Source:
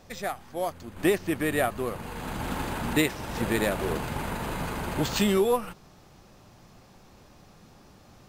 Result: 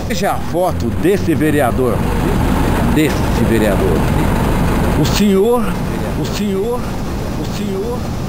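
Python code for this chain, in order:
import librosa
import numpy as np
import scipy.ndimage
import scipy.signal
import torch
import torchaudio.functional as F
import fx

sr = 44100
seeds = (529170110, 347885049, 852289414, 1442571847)

y = fx.low_shelf(x, sr, hz=500.0, db=9.5)
y = fx.echo_feedback(y, sr, ms=1196, feedback_pct=37, wet_db=-18.0)
y = fx.env_flatten(y, sr, amount_pct=70)
y = F.gain(torch.from_numpy(y), 3.0).numpy()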